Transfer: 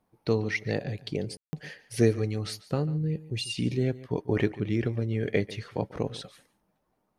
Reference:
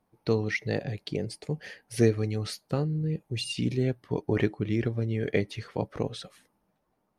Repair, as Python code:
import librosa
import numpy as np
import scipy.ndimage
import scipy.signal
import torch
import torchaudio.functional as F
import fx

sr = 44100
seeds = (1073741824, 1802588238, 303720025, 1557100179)

y = fx.fix_ambience(x, sr, seeds[0], print_start_s=6.66, print_end_s=7.16, start_s=1.37, end_s=1.53)
y = fx.fix_echo_inverse(y, sr, delay_ms=143, level_db=-18.0)